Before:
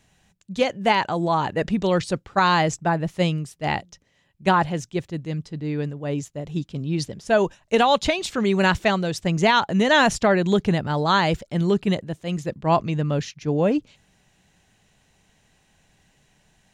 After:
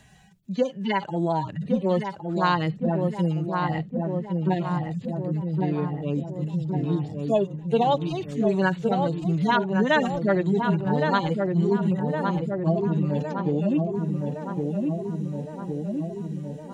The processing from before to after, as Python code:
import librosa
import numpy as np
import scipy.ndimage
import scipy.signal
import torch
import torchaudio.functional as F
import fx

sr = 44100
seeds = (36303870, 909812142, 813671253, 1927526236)

y = fx.hpss_only(x, sr, part='harmonic')
y = fx.echo_filtered(y, sr, ms=1113, feedback_pct=64, hz=1200.0, wet_db=-4.5)
y = fx.band_squash(y, sr, depth_pct=40)
y = y * librosa.db_to_amplitude(-1.5)